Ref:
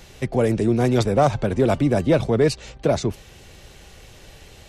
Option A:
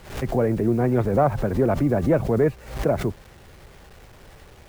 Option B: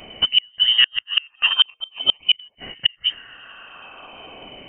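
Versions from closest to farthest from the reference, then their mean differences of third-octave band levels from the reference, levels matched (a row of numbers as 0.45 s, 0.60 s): A, B; 5.0 dB, 17.5 dB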